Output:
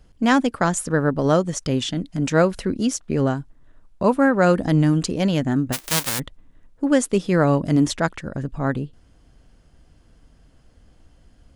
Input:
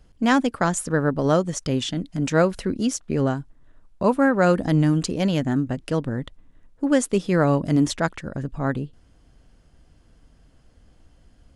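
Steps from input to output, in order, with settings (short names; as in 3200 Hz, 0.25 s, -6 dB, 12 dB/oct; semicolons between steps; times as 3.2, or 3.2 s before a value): 5.72–6.18 spectral whitening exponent 0.1; gain +1.5 dB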